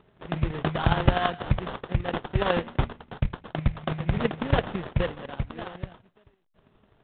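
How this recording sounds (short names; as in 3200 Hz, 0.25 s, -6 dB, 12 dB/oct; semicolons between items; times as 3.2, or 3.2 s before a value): chopped level 12 Hz, depth 60%, duty 10%; aliases and images of a low sample rate 2300 Hz, jitter 20%; µ-law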